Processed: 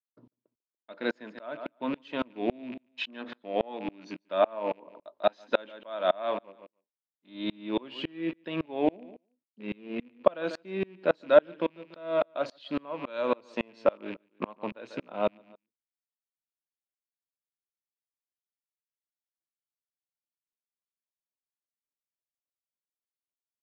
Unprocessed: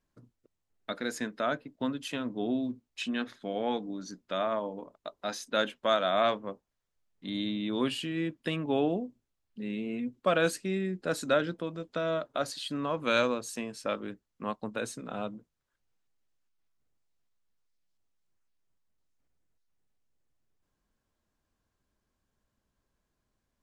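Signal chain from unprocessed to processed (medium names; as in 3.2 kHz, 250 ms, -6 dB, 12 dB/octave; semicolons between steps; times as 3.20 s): rattle on loud lows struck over -45 dBFS, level -35 dBFS; expander -58 dBFS; in parallel at -1 dB: gain riding 0.5 s; on the sum: cabinet simulation 190–4100 Hz, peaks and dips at 340 Hz +5 dB, 600 Hz +8 dB, 940 Hz +8 dB; on a send: feedback delay 144 ms, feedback 23%, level -17.5 dB; on the sum: sawtooth tremolo in dB swelling 3.6 Hz, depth 32 dB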